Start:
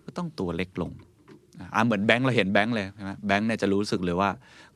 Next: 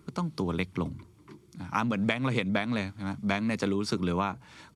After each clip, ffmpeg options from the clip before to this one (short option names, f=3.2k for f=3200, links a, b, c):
-af "aecho=1:1:0.9:0.32,acompressor=threshold=-24dB:ratio=6"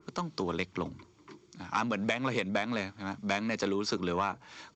-af "bass=f=250:g=-11,treble=f=4k:g=3,aresample=16000,asoftclip=type=tanh:threshold=-21dB,aresample=44100,adynamicequalizer=threshold=0.00447:dfrequency=2200:dqfactor=0.7:tfrequency=2200:tqfactor=0.7:attack=5:release=100:ratio=0.375:range=1.5:mode=cutabove:tftype=highshelf,volume=2dB"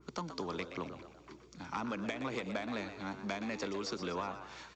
-filter_complex "[0:a]acrossover=split=180|700[a][b][c];[a]acompressor=threshold=-50dB:ratio=4[d];[b]acompressor=threshold=-36dB:ratio=4[e];[c]acompressor=threshold=-37dB:ratio=4[f];[d][e][f]amix=inputs=3:normalize=0,aeval=exprs='val(0)+0.000794*(sin(2*PI*60*n/s)+sin(2*PI*2*60*n/s)/2+sin(2*PI*3*60*n/s)/3+sin(2*PI*4*60*n/s)/4+sin(2*PI*5*60*n/s)/5)':c=same,asplit=2[g][h];[h]asplit=5[i][j][k][l][m];[i]adelay=122,afreqshift=88,volume=-10dB[n];[j]adelay=244,afreqshift=176,volume=-16.4dB[o];[k]adelay=366,afreqshift=264,volume=-22.8dB[p];[l]adelay=488,afreqshift=352,volume=-29.1dB[q];[m]adelay=610,afreqshift=440,volume=-35.5dB[r];[n][o][p][q][r]amix=inputs=5:normalize=0[s];[g][s]amix=inputs=2:normalize=0,volume=-2.5dB"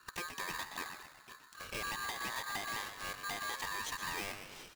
-af "asoftclip=type=hard:threshold=-33dB,aeval=exprs='val(0)*sgn(sin(2*PI*1400*n/s))':c=same,volume=-1dB"